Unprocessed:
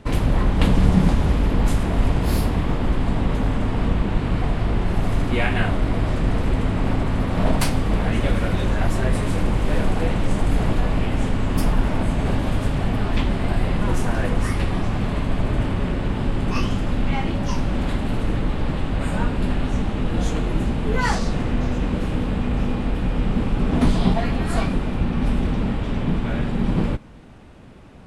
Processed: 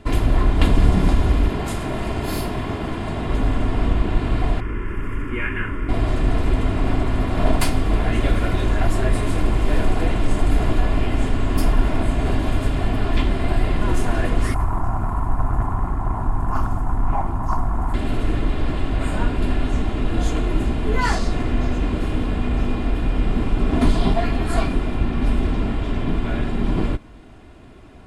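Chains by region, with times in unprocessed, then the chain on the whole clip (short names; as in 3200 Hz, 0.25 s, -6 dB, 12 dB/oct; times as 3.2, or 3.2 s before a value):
1.48–3.3 HPF 120 Hz + frequency shift -48 Hz
4.6–5.89 tone controls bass -7 dB, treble -10 dB + fixed phaser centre 1700 Hz, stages 4
14.54–17.94 EQ curve 140 Hz 0 dB, 610 Hz -15 dB, 880 Hz +11 dB, 2200 Hz -16 dB, 3400 Hz -26 dB, 6700 Hz -8 dB, 11000 Hz 0 dB + Doppler distortion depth 0.67 ms
whole clip: notch 5800 Hz, Q 15; comb 2.9 ms, depth 46%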